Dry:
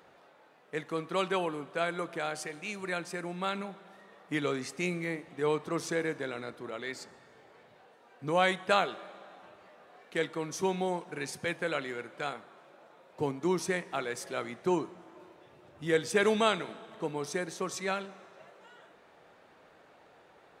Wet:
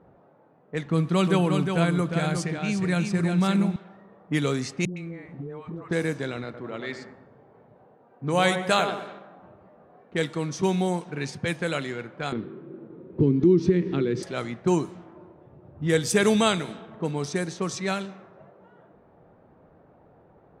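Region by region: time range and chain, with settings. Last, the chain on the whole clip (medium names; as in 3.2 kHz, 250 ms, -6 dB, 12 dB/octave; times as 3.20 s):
0.85–3.76 s: tone controls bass +10 dB, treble -3 dB + delay 357 ms -5.5 dB
4.85–5.91 s: phase dispersion highs, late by 116 ms, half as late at 550 Hz + compression, threshold -41 dBFS
6.44–9.19 s: bass shelf 110 Hz -9.5 dB + feedback echo behind a low-pass 98 ms, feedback 43%, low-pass 1.9 kHz, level -7 dB
12.32–14.23 s: resonant low shelf 500 Hz +11 dB, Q 3 + compression 2:1, threshold -31 dBFS + low-pass 4.3 kHz 24 dB/octave
whole clip: level-controlled noise filter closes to 790 Hz, open at -28 dBFS; tone controls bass +12 dB, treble +9 dB; trim +3 dB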